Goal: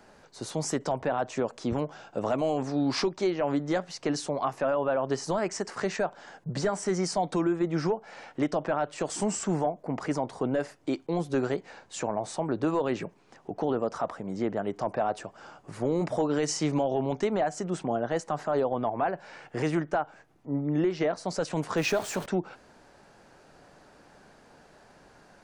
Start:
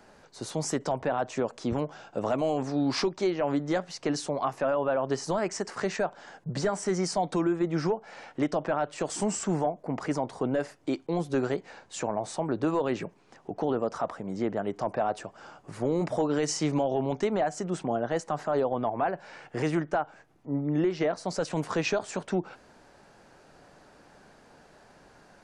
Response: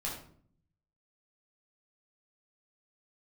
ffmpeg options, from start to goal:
-filter_complex "[0:a]asettb=1/sr,asplit=3[a][b][c];[a]atrim=end=21.774[d];[b]atrim=start=21.77:end=22.26,asetpts=PTS-STARTPTS,afade=t=in:d=0.004:c=qsin,afade=t=out:st=0.486:d=0.004:c=qsin,aeval=exprs='val(0)+0.5*0.015*sgn(val(0))':c=same[e];[c]atrim=start=22.256[f];[d][e]acrossfade=d=0.004:c1=hsin:c2=qsin[g];[g][f]acrossfade=d=0.004:c1=qsin:c2=hsin"

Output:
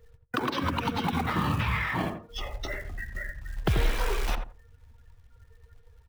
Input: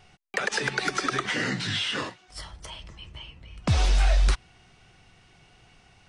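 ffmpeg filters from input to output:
-filter_complex "[0:a]afftdn=nr=23:nf=-47,asplit=2[a][b];[b]acompressor=threshold=-31dB:ratio=20,volume=2.5dB[c];[a][c]amix=inputs=2:normalize=0,asetrate=27781,aresample=44100,atempo=1.5874,acrusher=bits=5:mode=log:mix=0:aa=0.000001,acrossover=split=410|1600[d][e][f];[d]acompressor=threshold=-23dB:ratio=4[g];[e]acompressor=threshold=-32dB:ratio=4[h];[f]acompressor=threshold=-36dB:ratio=4[i];[g][h][i]amix=inputs=3:normalize=0,asplit=2[j][k];[k]adelay=85,lowpass=f=960:p=1,volume=-5dB,asplit=2[l][m];[m]adelay=85,lowpass=f=960:p=1,volume=0.21,asplit=2[n][o];[o]adelay=85,lowpass=f=960:p=1,volume=0.21[p];[l][n][p]amix=inputs=3:normalize=0[q];[j][q]amix=inputs=2:normalize=0"

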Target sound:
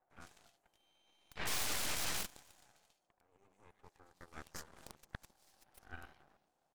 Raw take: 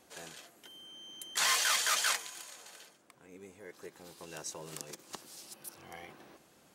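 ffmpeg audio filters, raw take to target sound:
-filter_complex "[0:a]equalizer=f=770:t=o:w=0.79:g=13,aeval=exprs='(mod(9.44*val(0)+1,2)-1)/9.44':c=same,highshelf=f=11k:g=-8,acrossover=split=300|2000[a][b][c];[c]adelay=100[d];[a]adelay=150[e];[e][b][d]amix=inputs=3:normalize=0,aeval=exprs='0.178*(cos(1*acos(clip(val(0)/0.178,-1,1)))-cos(1*PI/2))+0.0562*(cos(3*acos(clip(val(0)/0.178,-1,1)))-cos(3*PI/2))+0.00141*(cos(5*acos(clip(val(0)/0.178,-1,1)))-cos(5*PI/2))+0.0224*(cos(8*acos(clip(val(0)/0.178,-1,1)))-cos(8*PI/2))':c=same,volume=26.5dB,asoftclip=hard,volume=-26.5dB,volume=-1.5dB"

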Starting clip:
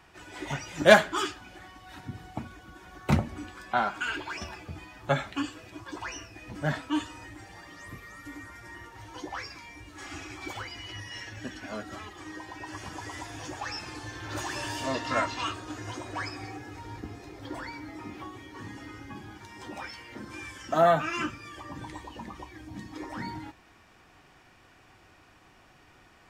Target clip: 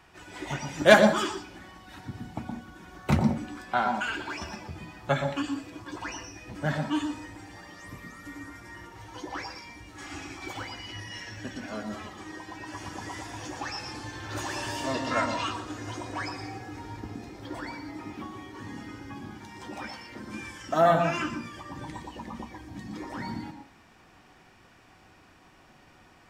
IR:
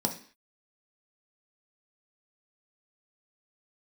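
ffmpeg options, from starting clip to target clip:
-filter_complex "[0:a]asplit=2[a][b];[1:a]atrim=start_sample=2205,adelay=118[c];[b][c]afir=irnorm=-1:irlink=0,volume=-14.5dB[d];[a][d]amix=inputs=2:normalize=0"

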